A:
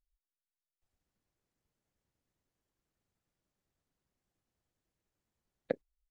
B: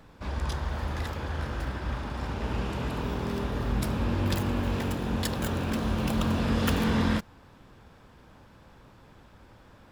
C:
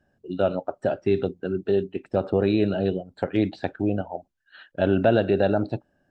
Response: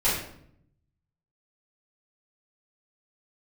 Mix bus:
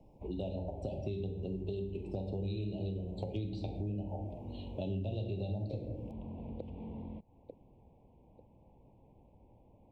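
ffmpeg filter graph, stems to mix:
-filter_complex "[0:a]equalizer=f=360:w=1.1:g=12.5,volume=-5dB,asplit=3[a][b][c];[b]volume=-4.5dB[d];[c]volume=-7.5dB[e];[1:a]lowpass=f=1.9k:w=0.5412,lowpass=f=1.9k:w=1.3066,acompressor=threshold=-33dB:ratio=6,volume=-7.5dB[f];[2:a]lowpass=f=4k:p=1,equalizer=f=2.8k:t=o:w=0.77:g=-4,volume=-1dB,asplit=2[g][h];[h]volume=-14.5dB[i];[3:a]atrim=start_sample=2205[j];[d][i]amix=inputs=2:normalize=0[k];[k][j]afir=irnorm=-1:irlink=0[l];[e]aecho=0:1:894|1788|2682|3576:1|0.26|0.0676|0.0176[m];[a][f][g][l][m]amix=inputs=5:normalize=0,acrossover=split=150|3000[n][o][p];[o]acompressor=threshold=-42dB:ratio=2.5[q];[n][q][p]amix=inputs=3:normalize=0,asuperstop=centerf=1500:order=8:qfactor=0.94,acompressor=threshold=-35dB:ratio=4"

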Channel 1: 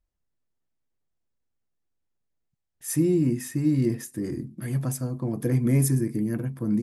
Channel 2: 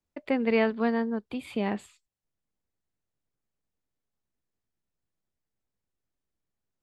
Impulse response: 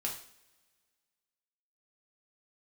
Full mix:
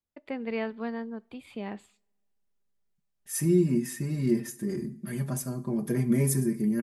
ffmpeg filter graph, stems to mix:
-filter_complex "[0:a]aecho=1:1:5:0.83,adelay=450,volume=-5.5dB,asplit=2[a][b];[b]volume=-10dB[c];[1:a]volume=-8.5dB,asplit=2[d][e];[e]volume=-21.5dB[f];[2:a]atrim=start_sample=2205[g];[c][f]amix=inputs=2:normalize=0[h];[h][g]afir=irnorm=-1:irlink=0[i];[a][d][i]amix=inputs=3:normalize=0"

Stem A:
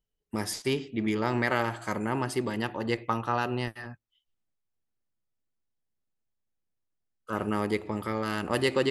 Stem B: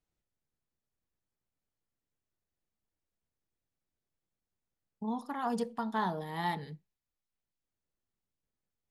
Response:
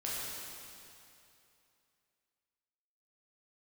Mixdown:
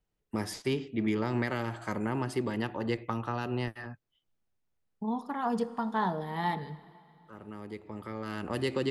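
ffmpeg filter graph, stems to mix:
-filter_complex "[0:a]acrossover=split=340|3000[a][b][c];[b]acompressor=threshold=-31dB:ratio=6[d];[a][d][c]amix=inputs=3:normalize=0,volume=-0.5dB[e];[1:a]volume=2.5dB,asplit=3[f][g][h];[g]volume=-18.5dB[i];[h]apad=whole_len=392909[j];[e][j]sidechaincompress=threshold=-49dB:ratio=16:attack=16:release=1420[k];[2:a]atrim=start_sample=2205[l];[i][l]afir=irnorm=-1:irlink=0[m];[k][f][m]amix=inputs=3:normalize=0,highshelf=f=4.1k:g=-8.5"

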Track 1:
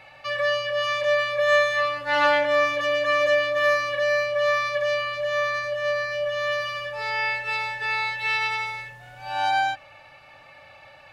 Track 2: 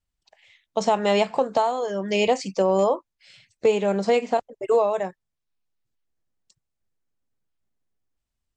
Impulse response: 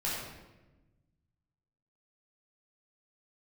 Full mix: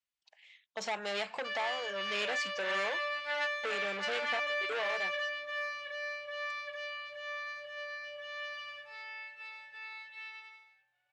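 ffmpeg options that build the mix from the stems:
-filter_complex "[0:a]adelay=1200,volume=-2.5dB,afade=t=out:st=8.01:d=0.4:silence=0.446684,afade=t=out:st=9.31:d=0.7:silence=0.266073,asplit=2[a][b];[b]volume=-4.5dB[c];[1:a]volume=2dB,asplit=2[d][e];[e]apad=whole_len=543743[f];[a][f]sidechaingate=range=-33dB:threshold=-52dB:ratio=16:detection=peak[g];[c]aecho=0:1:724:1[h];[g][d][h]amix=inputs=3:normalize=0,equalizer=f=1.9k:w=0.31:g=-4.5,asoftclip=type=tanh:threshold=-21.5dB,bandpass=f=2.5k:t=q:w=0.89:csg=0"

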